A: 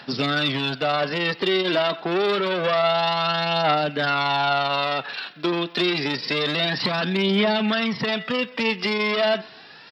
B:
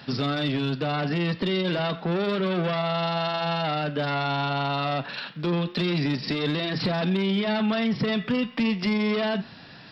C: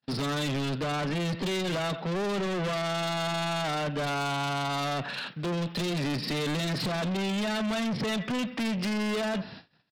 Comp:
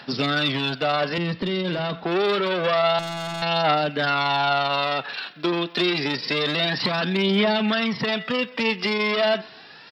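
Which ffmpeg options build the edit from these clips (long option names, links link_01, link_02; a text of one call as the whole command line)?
ffmpeg -i take0.wav -i take1.wav -i take2.wav -filter_complex "[0:a]asplit=3[link_01][link_02][link_03];[link_01]atrim=end=1.182[link_04];[1:a]atrim=start=1.178:end=2.042[link_05];[link_02]atrim=start=2.038:end=2.992[link_06];[2:a]atrim=start=2.988:end=3.422[link_07];[link_03]atrim=start=3.418[link_08];[link_04][link_05]acrossfade=duration=0.004:curve1=hsin:curve2=hsin[link_09];[link_09][link_06]acrossfade=duration=0.004:curve1=hsin:curve2=hsin[link_10];[link_10][link_07]acrossfade=duration=0.004:curve1=hsin:curve2=hsin[link_11];[link_11][link_08]acrossfade=duration=0.004:curve1=hsin:curve2=hsin" out.wav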